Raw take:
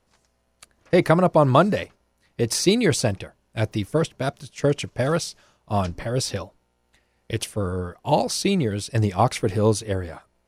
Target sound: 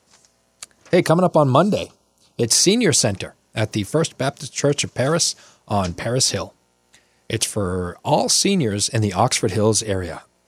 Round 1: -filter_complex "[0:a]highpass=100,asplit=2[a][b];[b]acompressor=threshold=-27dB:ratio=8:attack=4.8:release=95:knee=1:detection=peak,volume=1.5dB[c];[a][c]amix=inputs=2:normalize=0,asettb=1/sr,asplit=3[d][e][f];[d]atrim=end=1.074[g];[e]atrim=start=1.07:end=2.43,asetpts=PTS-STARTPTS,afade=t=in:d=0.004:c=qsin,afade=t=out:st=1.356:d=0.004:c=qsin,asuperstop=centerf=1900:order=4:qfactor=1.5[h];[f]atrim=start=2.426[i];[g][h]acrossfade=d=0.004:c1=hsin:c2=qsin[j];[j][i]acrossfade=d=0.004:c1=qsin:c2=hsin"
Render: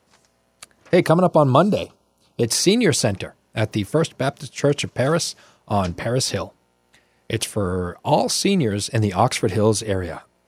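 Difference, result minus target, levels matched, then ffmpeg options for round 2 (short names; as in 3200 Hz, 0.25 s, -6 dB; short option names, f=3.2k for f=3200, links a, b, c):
8000 Hz band -5.0 dB
-filter_complex "[0:a]highpass=100,asplit=2[a][b];[b]acompressor=threshold=-27dB:ratio=8:attack=4.8:release=95:knee=1:detection=peak,equalizer=f=6.8k:w=0.73:g=12.5,volume=1.5dB[c];[a][c]amix=inputs=2:normalize=0,asettb=1/sr,asplit=3[d][e][f];[d]atrim=end=1.074[g];[e]atrim=start=1.07:end=2.43,asetpts=PTS-STARTPTS,afade=t=in:d=0.004:c=qsin,afade=t=out:st=1.356:d=0.004:c=qsin,asuperstop=centerf=1900:order=4:qfactor=1.5[h];[f]atrim=start=2.426[i];[g][h]acrossfade=d=0.004:c1=hsin:c2=qsin[j];[j][i]acrossfade=d=0.004:c1=qsin:c2=hsin"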